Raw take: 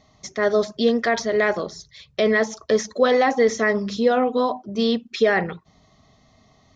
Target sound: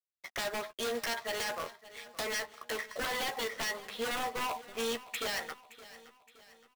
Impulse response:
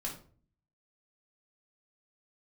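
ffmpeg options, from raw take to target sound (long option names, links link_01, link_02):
-filter_complex "[0:a]lowpass=frequency=2700:width=0.5412,lowpass=frequency=2700:width=1.3066,agate=range=-33dB:threshold=-49dB:ratio=3:detection=peak,highpass=990,asplit=2[link_01][link_02];[link_02]alimiter=limit=-21.5dB:level=0:latency=1:release=385,volume=-1dB[link_03];[link_01][link_03]amix=inputs=2:normalize=0,acompressor=threshold=-28dB:ratio=4,aeval=exprs='sgn(val(0))*max(abs(val(0))-0.00282,0)':channel_layout=same,acrusher=bits=3:mode=log:mix=0:aa=0.000001,aeval=exprs='0.0316*(abs(mod(val(0)/0.0316+3,4)-2)-1)':channel_layout=same,asplit=2[link_04][link_05];[link_05]adelay=13,volume=-8.5dB[link_06];[link_04][link_06]amix=inputs=2:normalize=0,asplit=2[link_07][link_08];[link_08]aecho=0:1:569|1138|1707|2276:0.133|0.0627|0.0295|0.0138[link_09];[link_07][link_09]amix=inputs=2:normalize=0"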